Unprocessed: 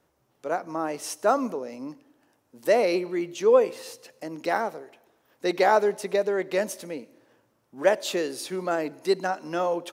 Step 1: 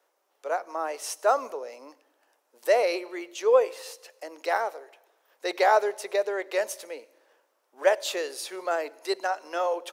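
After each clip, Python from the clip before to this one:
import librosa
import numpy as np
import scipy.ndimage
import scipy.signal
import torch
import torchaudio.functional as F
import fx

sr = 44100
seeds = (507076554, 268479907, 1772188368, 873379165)

y = scipy.signal.sosfilt(scipy.signal.butter(4, 450.0, 'highpass', fs=sr, output='sos'), x)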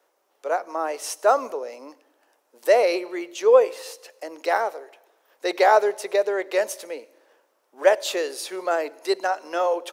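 y = fx.low_shelf(x, sr, hz=300.0, db=7.5)
y = y * 10.0 ** (3.0 / 20.0)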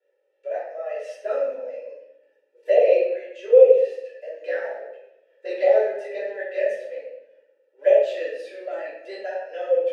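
y = fx.vowel_filter(x, sr, vowel='e')
y = fx.env_flanger(y, sr, rest_ms=2.2, full_db=-19.0)
y = fx.room_shoebox(y, sr, seeds[0], volume_m3=240.0, walls='mixed', distance_m=3.0)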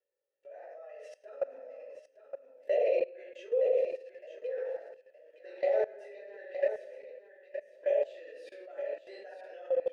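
y = fx.level_steps(x, sr, step_db=21)
y = y + 10.0 ** (-9.0 / 20.0) * np.pad(y, (int(917 * sr / 1000.0), 0))[:len(y)]
y = y * 10.0 ** (-5.5 / 20.0)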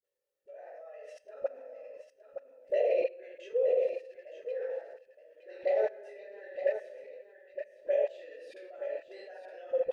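y = fx.dispersion(x, sr, late='highs', ms=45.0, hz=440.0)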